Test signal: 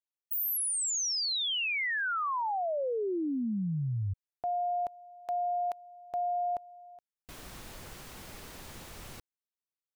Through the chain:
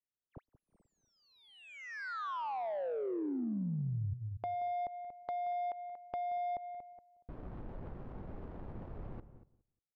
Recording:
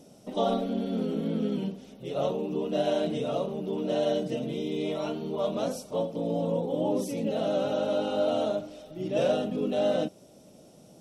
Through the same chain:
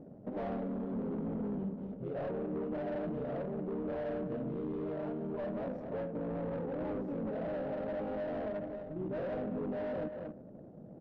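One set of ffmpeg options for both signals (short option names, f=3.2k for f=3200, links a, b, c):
-filter_complex "[0:a]volume=28dB,asoftclip=hard,volume=-28dB,asplit=2[a][b];[b]aecho=0:1:235:0.224[c];[a][c]amix=inputs=2:normalize=0,asplit=2[d][e];[e]highpass=f=720:p=1,volume=6dB,asoftclip=type=tanh:threshold=-26dB[f];[d][f]amix=inputs=2:normalize=0,lowpass=f=1.1k:p=1,volume=-6dB,lowshelf=f=290:g=9,acompressor=threshold=-40dB:ratio=2.5:attack=8.3:release=185:knee=1:detection=peak,asplit=2[g][h];[h]adelay=178,lowpass=f=2.1k:p=1,volume=-16dB,asplit=2[i][j];[j]adelay=178,lowpass=f=2.1k:p=1,volume=0.21[k];[i][k]amix=inputs=2:normalize=0[l];[g][l]amix=inputs=2:normalize=0,adynamicsmooth=sensitivity=4.5:basefreq=620,volume=2dB"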